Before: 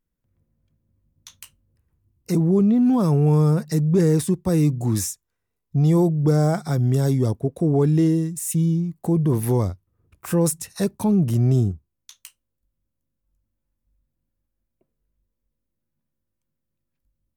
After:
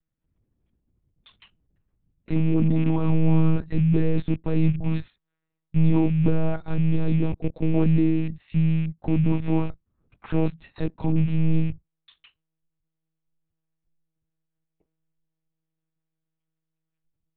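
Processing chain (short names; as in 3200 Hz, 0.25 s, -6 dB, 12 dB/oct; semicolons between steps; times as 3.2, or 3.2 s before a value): rattling part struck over -23 dBFS, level -29 dBFS; dynamic EQ 140 Hz, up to +5 dB, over -30 dBFS, Q 2.2; monotone LPC vocoder at 8 kHz 160 Hz; gain -3.5 dB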